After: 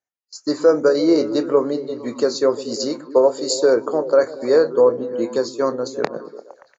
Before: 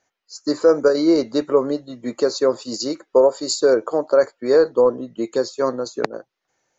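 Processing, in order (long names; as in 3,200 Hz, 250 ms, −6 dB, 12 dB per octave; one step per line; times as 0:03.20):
on a send: echo through a band-pass that steps 115 ms, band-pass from 180 Hz, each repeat 0.7 octaves, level −7 dB
on the sum: noise gate with hold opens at −33 dBFS
high-pass filter 52 Hz
double-tracking delay 26 ms −13 dB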